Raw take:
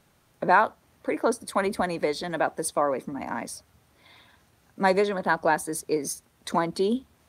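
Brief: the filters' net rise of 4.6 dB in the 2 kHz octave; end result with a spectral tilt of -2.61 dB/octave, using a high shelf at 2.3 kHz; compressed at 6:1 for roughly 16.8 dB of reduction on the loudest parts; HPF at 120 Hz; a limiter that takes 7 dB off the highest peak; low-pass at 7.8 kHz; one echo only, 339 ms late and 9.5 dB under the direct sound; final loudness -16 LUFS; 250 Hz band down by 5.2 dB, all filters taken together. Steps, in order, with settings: high-pass 120 Hz; low-pass 7.8 kHz; peaking EQ 250 Hz -7 dB; peaking EQ 2 kHz +5 dB; treble shelf 2.3 kHz +3 dB; compression 6:1, threshold -31 dBFS; peak limiter -25.5 dBFS; delay 339 ms -9.5 dB; trim +21.5 dB

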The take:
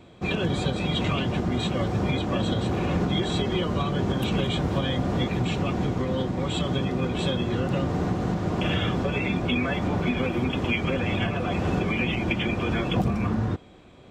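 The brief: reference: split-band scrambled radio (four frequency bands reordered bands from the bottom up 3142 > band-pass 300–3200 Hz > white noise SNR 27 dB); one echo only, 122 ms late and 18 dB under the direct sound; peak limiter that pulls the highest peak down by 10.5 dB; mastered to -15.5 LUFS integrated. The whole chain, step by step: peak limiter -23 dBFS; delay 122 ms -18 dB; four frequency bands reordered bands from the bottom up 3142; band-pass 300–3200 Hz; white noise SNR 27 dB; trim +14 dB

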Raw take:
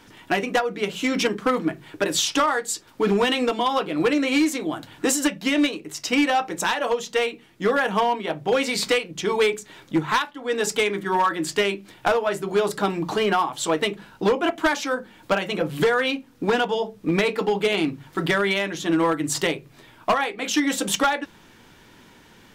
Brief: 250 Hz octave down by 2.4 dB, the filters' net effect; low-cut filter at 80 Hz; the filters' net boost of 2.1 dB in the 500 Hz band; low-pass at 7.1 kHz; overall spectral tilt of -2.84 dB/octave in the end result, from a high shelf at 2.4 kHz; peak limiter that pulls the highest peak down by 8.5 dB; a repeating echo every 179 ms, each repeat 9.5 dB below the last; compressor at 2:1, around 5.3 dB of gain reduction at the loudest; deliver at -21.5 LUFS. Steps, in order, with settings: high-pass 80 Hz; low-pass 7.1 kHz; peaking EQ 250 Hz -4.5 dB; peaking EQ 500 Hz +3.5 dB; treble shelf 2.4 kHz +5 dB; compression 2:1, threshold -24 dBFS; peak limiter -18 dBFS; feedback delay 179 ms, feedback 33%, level -9.5 dB; trim +6 dB

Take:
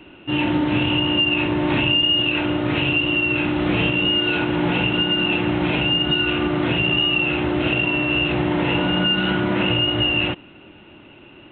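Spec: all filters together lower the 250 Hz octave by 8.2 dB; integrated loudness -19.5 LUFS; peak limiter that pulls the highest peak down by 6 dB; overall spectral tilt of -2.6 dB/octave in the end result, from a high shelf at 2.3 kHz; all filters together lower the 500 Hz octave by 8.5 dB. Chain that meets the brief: peaking EQ 250 Hz -8 dB; peaking EQ 500 Hz -8.5 dB; treble shelf 2.3 kHz -7.5 dB; trim +6 dB; peak limiter -12 dBFS

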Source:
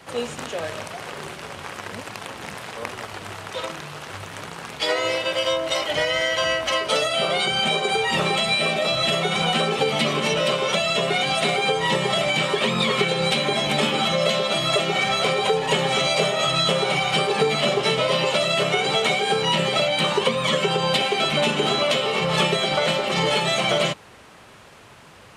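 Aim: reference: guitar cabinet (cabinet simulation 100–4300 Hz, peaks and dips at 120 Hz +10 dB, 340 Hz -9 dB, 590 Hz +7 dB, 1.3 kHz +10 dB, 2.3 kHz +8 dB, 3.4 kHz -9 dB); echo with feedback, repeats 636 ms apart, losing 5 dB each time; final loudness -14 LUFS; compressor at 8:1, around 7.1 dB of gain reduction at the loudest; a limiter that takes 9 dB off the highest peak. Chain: compression 8:1, threshold -23 dBFS; peak limiter -21.5 dBFS; cabinet simulation 100–4300 Hz, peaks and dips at 120 Hz +10 dB, 340 Hz -9 dB, 590 Hz +7 dB, 1.3 kHz +10 dB, 2.3 kHz +8 dB, 3.4 kHz -9 dB; feedback delay 636 ms, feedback 56%, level -5 dB; trim +11.5 dB

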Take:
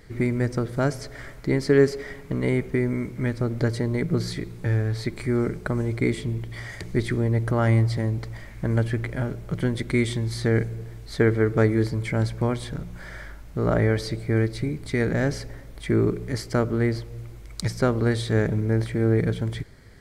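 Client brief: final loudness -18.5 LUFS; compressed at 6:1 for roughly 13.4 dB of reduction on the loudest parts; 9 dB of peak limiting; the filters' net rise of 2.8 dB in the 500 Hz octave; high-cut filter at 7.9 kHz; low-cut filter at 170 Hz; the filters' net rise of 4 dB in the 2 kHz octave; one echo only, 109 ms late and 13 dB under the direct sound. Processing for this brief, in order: high-pass 170 Hz; low-pass 7.9 kHz; peaking EQ 500 Hz +3.5 dB; peaking EQ 2 kHz +4.5 dB; compression 6:1, threshold -25 dBFS; peak limiter -20.5 dBFS; delay 109 ms -13 dB; trim +15 dB

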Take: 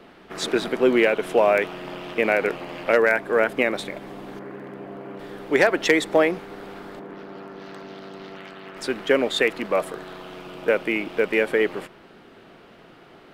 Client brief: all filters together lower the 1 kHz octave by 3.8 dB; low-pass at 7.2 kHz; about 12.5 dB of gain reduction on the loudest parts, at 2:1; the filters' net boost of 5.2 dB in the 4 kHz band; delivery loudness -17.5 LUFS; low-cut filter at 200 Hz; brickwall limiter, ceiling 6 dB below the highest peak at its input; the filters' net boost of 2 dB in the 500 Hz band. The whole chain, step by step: high-pass 200 Hz; low-pass 7.2 kHz; peaking EQ 500 Hz +4.5 dB; peaking EQ 1 kHz -8.5 dB; peaking EQ 4 kHz +7 dB; compression 2:1, threshold -36 dBFS; trim +17 dB; peak limiter -5 dBFS

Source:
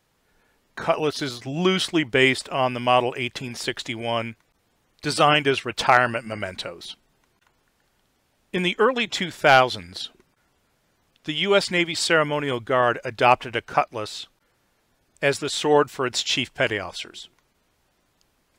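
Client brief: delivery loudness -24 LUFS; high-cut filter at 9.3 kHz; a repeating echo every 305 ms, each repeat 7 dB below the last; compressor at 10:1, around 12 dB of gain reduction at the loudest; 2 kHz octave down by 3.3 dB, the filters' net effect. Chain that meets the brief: low-pass 9.3 kHz; peaking EQ 2 kHz -4.5 dB; compression 10:1, threshold -24 dBFS; feedback delay 305 ms, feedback 45%, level -7 dB; trim +5.5 dB

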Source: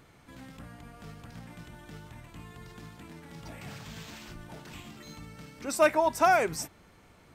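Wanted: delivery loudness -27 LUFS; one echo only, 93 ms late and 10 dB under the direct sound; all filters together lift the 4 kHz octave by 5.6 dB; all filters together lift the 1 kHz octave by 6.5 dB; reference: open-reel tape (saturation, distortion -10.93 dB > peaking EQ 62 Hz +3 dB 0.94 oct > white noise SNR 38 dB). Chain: peaking EQ 1 kHz +8.5 dB; peaking EQ 4 kHz +7 dB; delay 93 ms -10 dB; saturation -16 dBFS; peaking EQ 62 Hz +3 dB 0.94 oct; white noise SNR 38 dB

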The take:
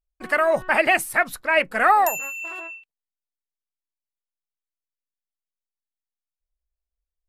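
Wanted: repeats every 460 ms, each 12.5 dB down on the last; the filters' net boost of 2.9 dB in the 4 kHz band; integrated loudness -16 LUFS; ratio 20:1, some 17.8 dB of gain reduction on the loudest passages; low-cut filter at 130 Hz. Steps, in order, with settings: high-pass 130 Hz; peaking EQ 4 kHz +5 dB; compression 20:1, threshold -30 dBFS; feedback delay 460 ms, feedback 24%, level -12.5 dB; trim +18 dB

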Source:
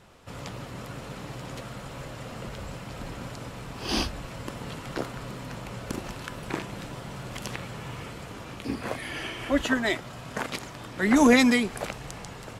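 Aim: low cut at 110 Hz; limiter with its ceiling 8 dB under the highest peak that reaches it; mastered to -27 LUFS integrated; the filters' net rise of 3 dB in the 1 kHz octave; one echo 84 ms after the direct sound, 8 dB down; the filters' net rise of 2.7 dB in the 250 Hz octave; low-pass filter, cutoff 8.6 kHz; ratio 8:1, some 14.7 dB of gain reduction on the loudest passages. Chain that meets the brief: high-pass 110 Hz; low-pass 8.6 kHz; peaking EQ 250 Hz +3 dB; peaking EQ 1 kHz +3.5 dB; compression 8:1, threshold -27 dBFS; peak limiter -23 dBFS; delay 84 ms -8 dB; trim +9 dB

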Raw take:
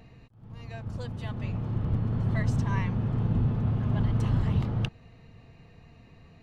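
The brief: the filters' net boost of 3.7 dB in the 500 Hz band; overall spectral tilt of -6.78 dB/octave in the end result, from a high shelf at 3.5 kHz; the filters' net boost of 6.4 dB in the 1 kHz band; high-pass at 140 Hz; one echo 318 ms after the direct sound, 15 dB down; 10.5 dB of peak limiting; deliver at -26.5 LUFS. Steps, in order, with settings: high-pass 140 Hz; peaking EQ 500 Hz +3 dB; peaking EQ 1 kHz +7 dB; treble shelf 3.5 kHz -5.5 dB; peak limiter -24.5 dBFS; delay 318 ms -15 dB; trim +7 dB

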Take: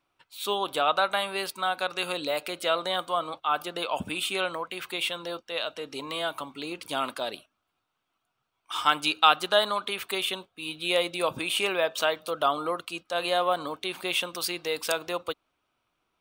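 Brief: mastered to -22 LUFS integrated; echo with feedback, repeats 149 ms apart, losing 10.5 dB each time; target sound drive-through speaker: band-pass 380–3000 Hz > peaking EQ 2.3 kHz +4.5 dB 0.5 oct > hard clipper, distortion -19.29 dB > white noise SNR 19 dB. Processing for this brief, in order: band-pass 380–3000 Hz; peaking EQ 2.3 kHz +4.5 dB 0.5 oct; feedback delay 149 ms, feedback 30%, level -10.5 dB; hard clipper -13 dBFS; white noise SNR 19 dB; trim +6.5 dB

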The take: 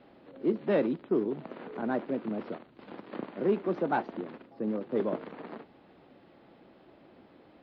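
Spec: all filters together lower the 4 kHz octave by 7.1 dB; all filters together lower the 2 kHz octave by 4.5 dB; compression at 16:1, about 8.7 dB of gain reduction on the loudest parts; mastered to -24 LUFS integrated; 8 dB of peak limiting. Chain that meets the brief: peaking EQ 2 kHz -5 dB; peaking EQ 4 kHz -7.5 dB; compression 16:1, threshold -30 dBFS; trim +17.5 dB; peak limiter -13 dBFS

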